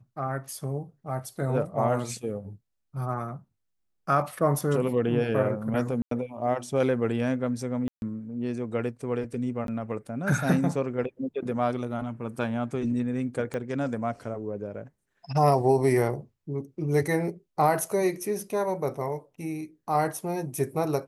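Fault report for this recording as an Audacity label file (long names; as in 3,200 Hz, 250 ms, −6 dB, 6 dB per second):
6.020000	6.110000	drop-out 93 ms
7.880000	8.020000	drop-out 141 ms
9.670000	9.680000	drop-out 12 ms
13.540000	13.540000	click −20 dBFS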